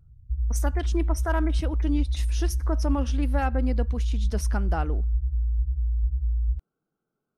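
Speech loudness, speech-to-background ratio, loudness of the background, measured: -31.5 LUFS, -3.5 dB, -28.0 LUFS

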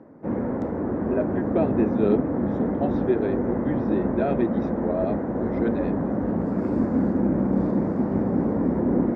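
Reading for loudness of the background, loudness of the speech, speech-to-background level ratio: -25.0 LUFS, -28.0 LUFS, -3.0 dB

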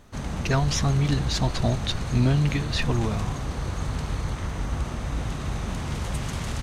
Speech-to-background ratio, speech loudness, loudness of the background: 5.5 dB, -25.5 LUFS, -31.0 LUFS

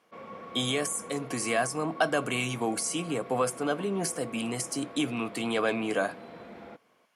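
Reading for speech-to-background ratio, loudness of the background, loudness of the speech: 15.0 dB, -45.0 LUFS, -30.0 LUFS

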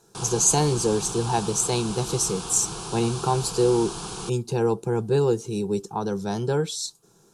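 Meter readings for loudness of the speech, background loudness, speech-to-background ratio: -24.0 LUFS, -33.5 LUFS, 9.5 dB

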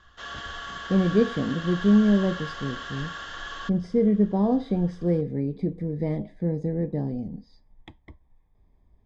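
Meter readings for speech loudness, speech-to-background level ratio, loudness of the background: -25.0 LUFS, 11.0 dB, -36.0 LUFS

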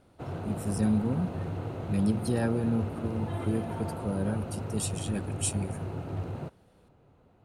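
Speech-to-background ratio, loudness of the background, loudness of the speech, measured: 5.0 dB, -36.5 LUFS, -31.5 LUFS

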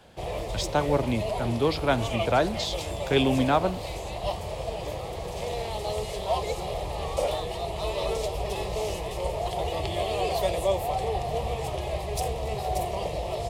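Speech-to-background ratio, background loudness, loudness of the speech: 4.5 dB, -31.0 LUFS, -26.5 LUFS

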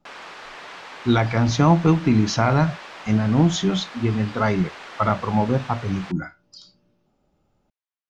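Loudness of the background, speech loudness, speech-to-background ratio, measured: -38.0 LUFS, -21.0 LUFS, 17.0 dB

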